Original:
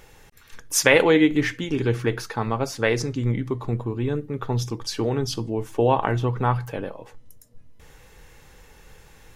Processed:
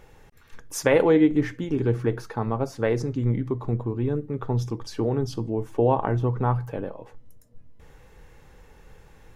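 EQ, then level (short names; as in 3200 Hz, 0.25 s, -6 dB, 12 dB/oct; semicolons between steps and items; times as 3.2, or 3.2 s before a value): high shelf 2000 Hz -10 dB; dynamic EQ 2700 Hz, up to -6 dB, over -42 dBFS, Q 0.71; 0.0 dB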